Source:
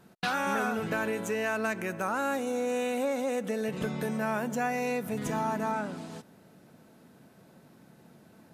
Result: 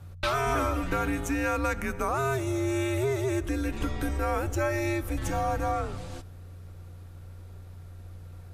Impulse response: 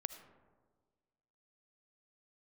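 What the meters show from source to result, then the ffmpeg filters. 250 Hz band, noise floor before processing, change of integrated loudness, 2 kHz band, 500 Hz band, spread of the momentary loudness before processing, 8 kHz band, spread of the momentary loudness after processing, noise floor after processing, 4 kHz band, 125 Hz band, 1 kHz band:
+1.5 dB, −58 dBFS, +2.0 dB, 0.0 dB, +0.5 dB, 3 LU, +2.5 dB, 19 LU, −45 dBFS, +2.0 dB, +9.5 dB, +1.5 dB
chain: -filter_complex "[0:a]aeval=exprs='val(0)+0.00562*(sin(2*PI*60*n/s)+sin(2*PI*2*60*n/s)/2+sin(2*PI*3*60*n/s)/3+sin(2*PI*4*60*n/s)/4+sin(2*PI*5*60*n/s)/5)':channel_layout=same,afreqshift=-150,asplit=2[link_01][link_02];[1:a]atrim=start_sample=2205,afade=type=out:start_time=0.16:duration=0.01,atrim=end_sample=7497[link_03];[link_02][link_03]afir=irnorm=-1:irlink=0,volume=-7dB[link_04];[link_01][link_04]amix=inputs=2:normalize=0"

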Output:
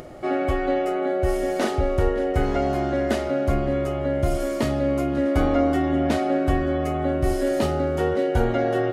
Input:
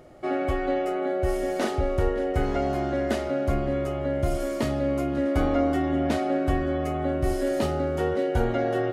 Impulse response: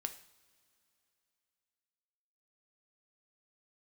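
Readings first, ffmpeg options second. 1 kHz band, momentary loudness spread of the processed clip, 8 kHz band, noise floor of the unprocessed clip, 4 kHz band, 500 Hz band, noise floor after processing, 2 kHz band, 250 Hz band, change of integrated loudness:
+3.0 dB, 3 LU, +3.0 dB, −30 dBFS, +3.0 dB, +3.0 dB, −27 dBFS, +3.0 dB, +3.0 dB, +3.0 dB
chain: -af "acompressor=mode=upward:threshold=-36dB:ratio=2.5,volume=3dB"

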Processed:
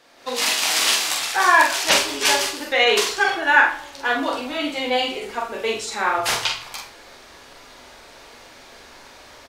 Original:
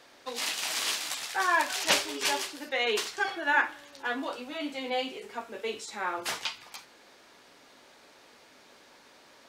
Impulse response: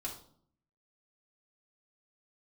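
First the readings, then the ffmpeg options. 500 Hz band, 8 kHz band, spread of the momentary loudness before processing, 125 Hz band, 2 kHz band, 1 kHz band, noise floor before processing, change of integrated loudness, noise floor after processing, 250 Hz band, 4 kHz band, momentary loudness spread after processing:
+10.5 dB, +11.0 dB, 11 LU, can't be measured, +11.0 dB, +11.0 dB, −57 dBFS, +11.0 dB, −46 dBFS, +9.0 dB, +11.0 dB, 11 LU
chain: -filter_complex "[0:a]asubboost=boost=6:cutoff=78,asplit=2[link_01][link_02];[1:a]atrim=start_sample=2205,asetrate=41895,aresample=44100,adelay=25[link_03];[link_02][link_03]afir=irnorm=-1:irlink=0,volume=-8dB[link_04];[link_01][link_04]amix=inputs=2:normalize=0,dynaudnorm=framelen=150:gausssize=3:maxgain=10dB,asplit=2[link_05][link_06];[link_06]adelay=44,volume=-4.5dB[link_07];[link_05][link_07]amix=inputs=2:normalize=0"

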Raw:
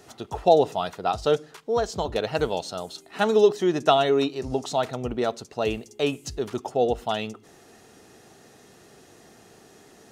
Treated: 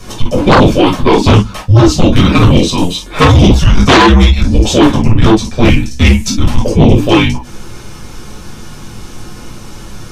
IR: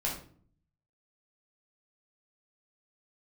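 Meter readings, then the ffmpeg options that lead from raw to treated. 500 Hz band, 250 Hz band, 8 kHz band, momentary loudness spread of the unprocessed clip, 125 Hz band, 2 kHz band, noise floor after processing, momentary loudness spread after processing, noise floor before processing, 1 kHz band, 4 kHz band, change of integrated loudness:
+9.0 dB, +21.5 dB, +19.0 dB, 12 LU, +28.5 dB, +19.0 dB, −29 dBFS, 7 LU, −53 dBFS, +13.0 dB, +17.5 dB, +16.0 dB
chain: -filter_complex "[0:a]afreqshift=-350[link_01];[1:a]atrim=start_sample=2205,atrim=end_sample=3969,asetrate=52920,aresample=44100[link_02];[link_01][link_02]afir=irnorm=-1:irlink=0,aeval=exprs='1.58*sin(PI/2*8.91*val(0)/1.58)':channel_layout=same,volume=-5dB"

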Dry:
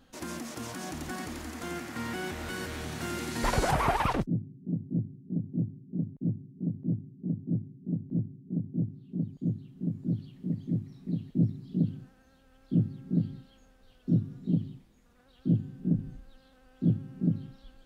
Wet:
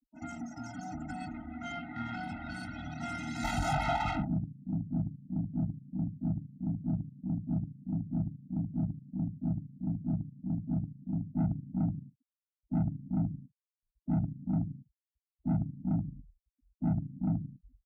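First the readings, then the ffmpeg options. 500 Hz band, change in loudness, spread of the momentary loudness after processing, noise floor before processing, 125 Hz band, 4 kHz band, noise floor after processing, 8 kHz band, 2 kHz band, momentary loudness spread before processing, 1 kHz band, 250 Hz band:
−7.5 dB, −3.0 dB, 9 LU, −61 dBFS, −2.5 dB, −6.0 dB, below −85 dBFS, can't be measured, −4.0 dB, 9 LU, −3.0 dB, −2.5 dB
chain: -af "aecho=1:1:20|42|66.2|92.82|122.1:0.631|0.398|0.251|0.158|0.1,afftfilt=real='re*gte(hypot(re,im),0.0141)':imag='im*gte(hypot(re,im),0.0141)':win_size=1024:overlap=0.75,aeval=exprs='(tanh(22.4*val(0)+0.8)-tanh(0.8))/22.4':channel_layout=same,highpass=48,afftfilt=real='re*eq(mod(floor(b*sr/1024/310),2),0)':imag='im*eq(mod(floor(b*sr/1024/310),2),0)':win_size=1024:overlap=0.75,volume=2.5dB"

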